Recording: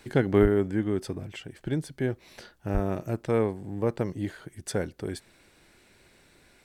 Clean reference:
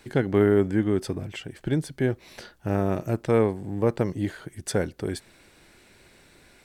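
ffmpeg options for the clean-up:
-filter_complex "[0:a]asplit=3[a][b][c];[a]afade=t=out:st=0.41:d=0.02[d];[b]highpass=f=140:w=0.5412,highpass=f=140:w=1.3066,afade=t=in:st=0.41:d=0.02,afade=t=out:st=0.53:d=0.02[e];[c]afade=t=in:st=0.53:d=0.02[f];[d][e][f]amix=inputs=3:normalize=0,asplit=3[g][h][i];[g]afade=t=out:st=2.73:d=0.02[j];[h]highpass=f=140:w=0.5412,highpass=f=140:w=1.3066,afade=t=in:st=2.73:d=0.02,afade=t=out:st=2.85:d=0.02[k];[i]afade=t=in:st=2.85:d=0.02[l];[j][k][l]amix=inputs=3:normalize=0,asetnsamples=n=441:p=0,asendcmd='0.45 volume volume 4dB',volume=0dB"

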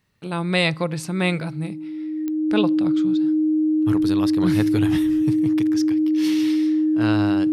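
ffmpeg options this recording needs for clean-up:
-af "adeclick=t=4,bandreject=f=310:w=30"

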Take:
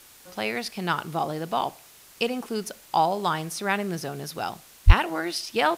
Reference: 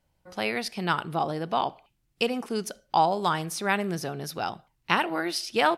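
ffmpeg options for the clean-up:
-filter_complex "[0:a]asplit=3[a][b][c];[a]afade=t=out:st=4.86:d=0.02[d];[b]highpass=f=140:w=0.5412,highpass=f=140:w=1.3066,afade=t=in:st=4.86:d=0.02,afade=t=out:st=4.98:d=0.02[e];[c]afade=t=in:st=4.98:d=0.02[f];[d][e][f]amix=inputs=3:normalize=0,afwtdn=0.0032"

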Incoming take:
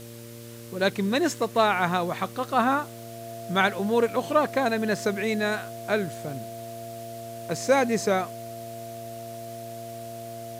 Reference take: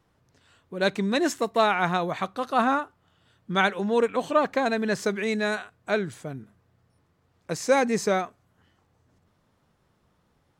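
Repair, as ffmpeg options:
-af "adeclick=t=4,bandreject=f=116.6:t=h:w=4,bandreject=f=233.2:t=h:w=4,bandreject=f=349.8:t=h:w=4,bandreject=f=466.4:t=h:w=4,bandreject=f=583:t=h:w=4,bandreject=f=680:w=30,afwtdn=0.004"

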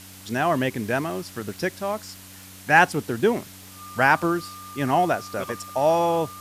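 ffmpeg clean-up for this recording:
-af "adeclick=t=4,bandreject=f=94.7:t=h:w=4,bandreject=f=189.4:t=h:w=4,bandreject=f=284.1:t=h:w=4,bandreject=f=1.2k:w=30,afftdn=nr=23:nf=-44"

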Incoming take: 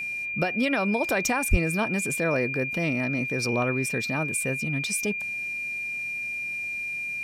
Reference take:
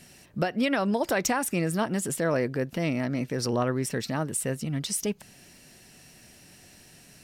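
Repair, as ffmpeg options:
-filter_complex "[0:a]bandreject=f=2.4k:w=30,asplit=3[a][b][c];[a]afade=t=out:st=1.5:d=0.02[d];[b]highpass=f=140:w=0.5412,highpass=f=140:w=1.3066,afade=t=in:st=1.5:d=0.02,afade=t=out:st=1.62:d=0.02[e];[c]afade=t=in:st=1.62:d=0.02[f];[d][e][f]amix=inputs=3:normalize=0"

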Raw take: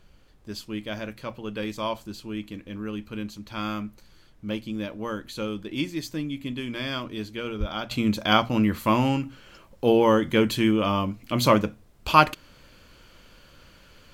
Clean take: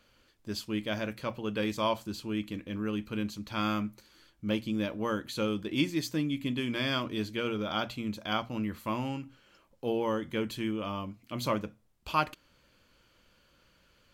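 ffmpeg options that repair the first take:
-filter_complex "[0:a]asplit=3[a][b][c];[a]afade=t=out:st=7.59:d=0.02[d];[b]highpass=f=140:w=0.5412,highpass=f=140:w=1.3066,afade=t=in:st=7.59:d=0.02,afade=t=out:st=7.71:d=0.02[e];[c]afade=t=in:st=7.71:d=0.02[f];[d][e][f]amix=inputs=3:normalize=0,agate=range=-21dB:threshold=-45dB,asetnsamples=n=441:p=0,asendcmd='7.91 volume volume -11.5dB',volume=0dB"

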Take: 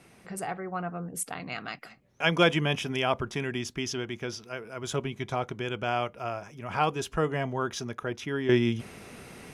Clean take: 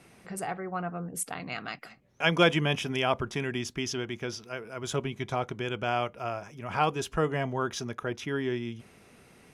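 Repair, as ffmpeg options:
-af "asetnsamples=n=441:p=0,asendcmd='8.49 volume volume -10dB',volume=0dB"

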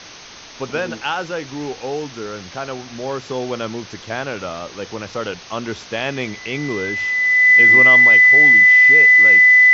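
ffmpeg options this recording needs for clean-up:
-af "bandreject=f=2k:w=30,afwtdn=0.02"

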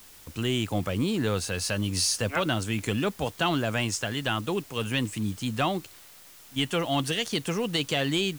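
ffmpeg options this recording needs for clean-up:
-af "afftdn=nr=24:nf=-50"

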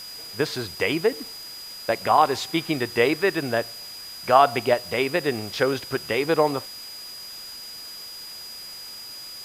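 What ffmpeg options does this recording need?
-af "bandreject=f=4.9k:w=30,afwtdn=0.0071"

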